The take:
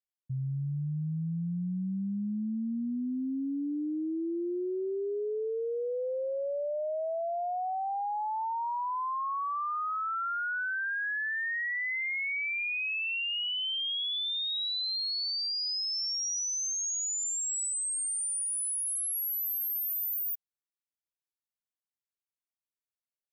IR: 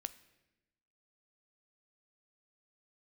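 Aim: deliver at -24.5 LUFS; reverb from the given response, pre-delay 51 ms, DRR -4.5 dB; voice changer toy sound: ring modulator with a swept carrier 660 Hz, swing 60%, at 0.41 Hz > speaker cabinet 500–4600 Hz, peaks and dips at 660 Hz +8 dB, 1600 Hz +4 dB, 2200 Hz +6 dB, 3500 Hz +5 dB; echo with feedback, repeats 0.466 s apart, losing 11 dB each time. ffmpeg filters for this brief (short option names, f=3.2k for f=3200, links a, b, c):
-filter_complex "[0:a]aecho=1:1:466|932|1398:0.282|0.0789|0.0221,asplit=2[a][b];[1:a]atrim=start_sample=2205,adelay=51[c];[b][c]afir=irnorm=-1:irlink=0,volume=7dB[d];[a][d]amix=inputs=2:normalize=0,aeval=exprs='val(0)*sin(2*PI*660*n/s+660*0.6/0.41*sin(2*PI*0.41*n/s))':c=same,highpass=500,equalizer=f=660:t=q:w=4:g=8,equalizer=f=1.6k:t=q:w=4:g=4,equalizer=f=2.2k:t=q:w=4:g=6,equalizer=f=3.5k:t=q:w=4:g=5,lowpass=f=4.6k:w=0.5412,lowpass=f=4.6k:w=1.3066,volume=2dB"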